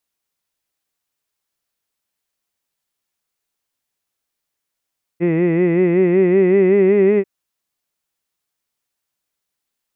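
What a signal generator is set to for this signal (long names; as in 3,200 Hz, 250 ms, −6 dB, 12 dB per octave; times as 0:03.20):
vowel by formant synthesis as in hid, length 2.04 s, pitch 166 Hz, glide +3.5 semitones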